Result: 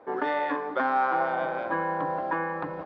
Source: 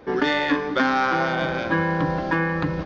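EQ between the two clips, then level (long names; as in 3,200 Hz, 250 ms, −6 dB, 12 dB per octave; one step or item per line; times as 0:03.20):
resonant band-pass 800 Hz, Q 1.4
high-frequency loss of the air 83 metres
0.0 dB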